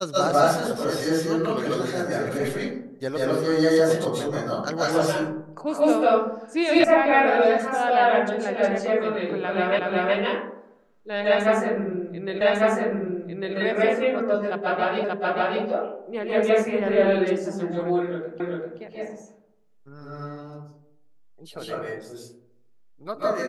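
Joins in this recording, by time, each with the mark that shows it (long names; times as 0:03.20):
0:06.84: cut off before it has died away
0:09.79: the same again, the last 0.37 s
0:12.41: the same again, the last 1.15 s
0:15.04: the same again, the last 0.58 s
0:18.40: the same again, the last 0.39 s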